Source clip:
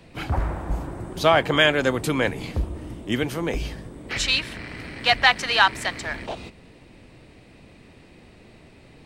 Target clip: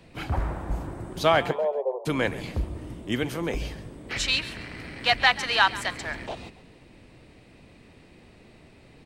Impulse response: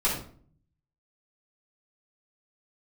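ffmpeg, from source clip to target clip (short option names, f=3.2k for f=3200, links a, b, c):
-filter_complex "[0:a]asplit=3[a][b][c];[a]afade=t=out:st=1.51:d=0.02[d];[b]asuperpass=centerf=630:order=20:qfactor=1,afade=t=in:st=1.51:d=0.02,afade=t=out:st=2.05:d=0.02[e];[c]afade=t=in:st=2.05:d=0.02[f];[d][e][f]amix=inputs=3:normalize=0,asplit=4[g][h][i][j];[h]adelay=137,afreqshift=48,volume=-17dB[k];[i]adelay=274,afreqshift=96,volume=-26.1dB[l];[j]adelay=411,afreqshift=144,volume=-35.2dB[m];[g][k][l][m]amix=inputs=4:normalize=0,volume=-3dB"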